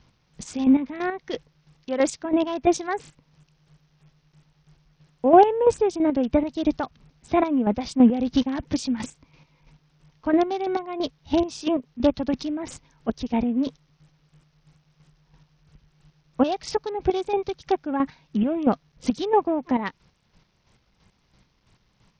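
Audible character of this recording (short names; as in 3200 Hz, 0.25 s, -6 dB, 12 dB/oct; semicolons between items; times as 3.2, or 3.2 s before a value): chopped level 3 Hz, depth 60%, duty 30%; a quantiser's noise floor 12-bit, dither none; SBC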